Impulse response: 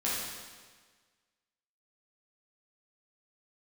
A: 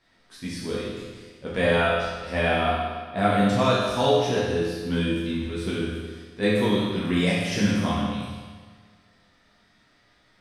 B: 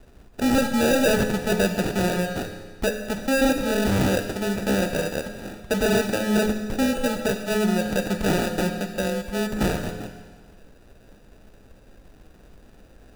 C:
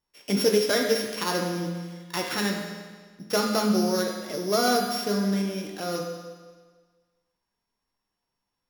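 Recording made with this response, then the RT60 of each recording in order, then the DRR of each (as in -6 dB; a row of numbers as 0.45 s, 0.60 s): A; 1.5 s, 1.5 s, 1.5 s; -8.0 dB, 4.5 dB, 0.0 dB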